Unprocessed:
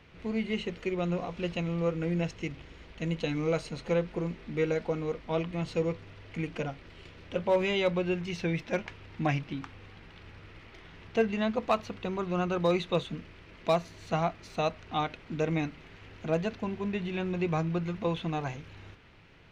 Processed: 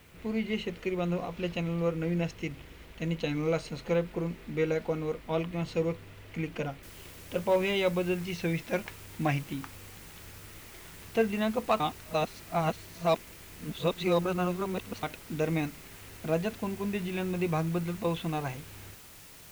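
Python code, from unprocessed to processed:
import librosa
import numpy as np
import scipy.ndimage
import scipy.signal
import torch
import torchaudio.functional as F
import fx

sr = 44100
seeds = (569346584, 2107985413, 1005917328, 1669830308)

y = fx.noise_floor_step(x, sr, seeds[0], at_s=6.83, before_db=-65, after_db=-52, tilt_db=0.0)
y = fx.edit(y, sr, fx.reverse_span(start_s=11.8, length_s=3.23), tone=tone)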